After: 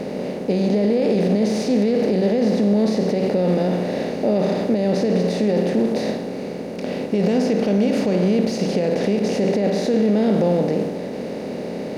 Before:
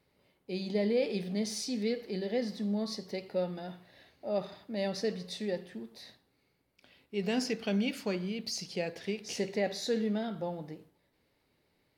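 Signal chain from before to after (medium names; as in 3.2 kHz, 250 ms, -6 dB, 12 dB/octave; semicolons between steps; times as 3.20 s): spectral levelling over time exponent 0.4; peak limiter -24 dBFS, peak gain reduction 11 dB; tilt shelf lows +8 dB, about 1.2 kHz; trim +8.5 dB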